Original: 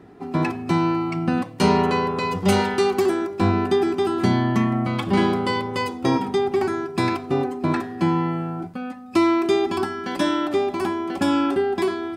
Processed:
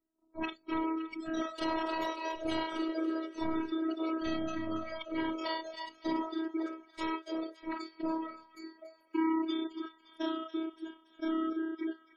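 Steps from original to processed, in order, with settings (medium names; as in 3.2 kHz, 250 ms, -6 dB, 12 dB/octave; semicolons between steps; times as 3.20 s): time reversed locally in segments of 31 ms; ever faster or slower copies 159 ms, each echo +5 st, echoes 2, each echo -6 dB; saturation -18.5 dBFS, distortion -12 dB; gate -25 dBFS, range -15 dB; spectral noise reduction 16 dB; spectral gate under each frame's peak -25 dB strong; peaking EQ 3.5 kHz +5.5 dB 0.73 oct; feedback echo behind a high-pass 283 ms, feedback 50%, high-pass 1.5 kHz, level -13 dB; robot voice 323 Hz; trim -6.5 dB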